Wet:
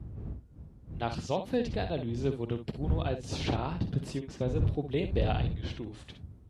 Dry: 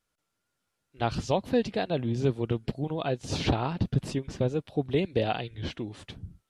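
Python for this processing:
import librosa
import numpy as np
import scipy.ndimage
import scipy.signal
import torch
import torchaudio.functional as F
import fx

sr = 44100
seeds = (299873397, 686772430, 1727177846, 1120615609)

y = fx.dmg_wind(x, sr, seeds[0], corner_hz=86.0, level_db=-28.0)
y = scipy.signal.sosfilt(scipy.signal.butter(2, 52.0, 'highpass', fs=sr, output='sos'), y)
y = fx.room_early_taps(y, sr, ms=(51, 63), db=(-15.5, -10.0))
y = y * 10.0 ** (-5.0 / 20.0)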